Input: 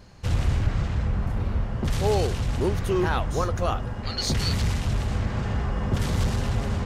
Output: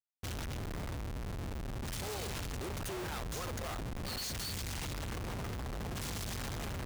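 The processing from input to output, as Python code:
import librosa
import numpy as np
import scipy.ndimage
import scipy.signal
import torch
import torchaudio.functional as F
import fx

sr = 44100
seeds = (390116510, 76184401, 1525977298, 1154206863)

y = F.preemphasis(torch.from_numpy(x), 0.8).numpy()
y = fx.schmitt(y, sr, flips_db=-47.5)
y = y * librosa.db_to_amplitude(-1.5)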